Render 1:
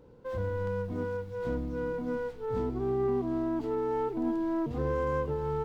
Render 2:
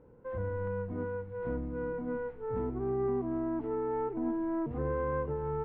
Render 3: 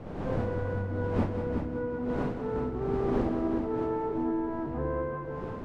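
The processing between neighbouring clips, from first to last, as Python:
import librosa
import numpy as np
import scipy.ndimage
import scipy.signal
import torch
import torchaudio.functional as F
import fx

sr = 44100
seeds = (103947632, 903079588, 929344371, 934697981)

y1 = scipy.signal.sosfilt(scipy.signal.butter(4, 2200.0, 'lowpass', fs=sr, output='sos'), x)
y1 = y1 * librosa.db_to_amplitude(-2.5)
y2 = fx.fade_out_tail(y1, sr, length_s=0.79)
y2 = fx.dmg_wind(y2, sr, seeds[0], corner_hz=410.0, level_db=-38.0)
y2 = fx.echo_heads(y2, sr, ms=187, heads='first and second', feedback_pct=40, wet_db=-8.5)
y2 = y2 * librosa.db_to_amplitude(1.0)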